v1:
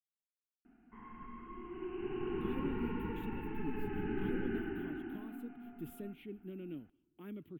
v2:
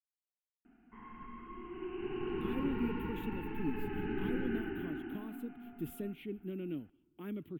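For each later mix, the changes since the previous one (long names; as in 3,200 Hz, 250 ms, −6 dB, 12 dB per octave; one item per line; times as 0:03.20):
speech +5.0 dB
background: remove high-frequency loss of the air 210 metres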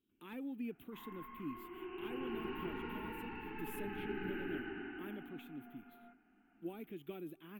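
speech: entry −2.20 s
master: add low-shelf EQ 340 Hz −11 dB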